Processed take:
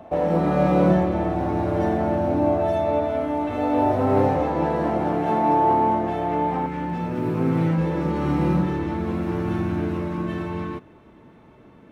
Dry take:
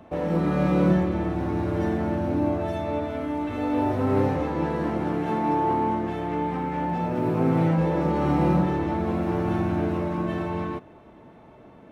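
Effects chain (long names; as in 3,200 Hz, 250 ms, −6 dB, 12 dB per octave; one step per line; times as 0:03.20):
parametric band 690 Hz +9 dB 0.77 octaves, from 0:06.66 −7 dB
level +1 dB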